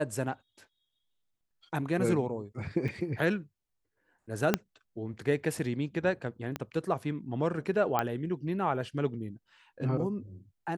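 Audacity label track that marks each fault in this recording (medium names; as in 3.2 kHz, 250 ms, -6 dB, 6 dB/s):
2.880000	2.890000	dropout 5.3 ms
4.540000	4.540000	pop -9 dBFS
6.560000	6.560000	pop -19 dBFS
7.990000	7.990000	pop -14 dBFS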